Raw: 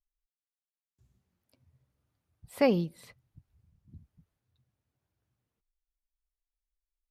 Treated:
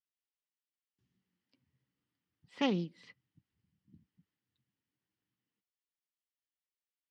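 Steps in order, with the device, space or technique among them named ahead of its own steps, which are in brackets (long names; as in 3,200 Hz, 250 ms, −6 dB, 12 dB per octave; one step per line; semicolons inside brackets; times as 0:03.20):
full-range speaker at full volume (highs frequency-modulated by the lows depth 0.26 ms; loudspeaker in its box 160–6,000 Hz, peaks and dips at 190 Hz +7 dB, 290 Hz +7 dB, 640 Hz −10 dB, 1,900 Hz +8 dB, 3,000 Hz +9 dB, 5,000 Hz +4 dB)
level −7.5 dB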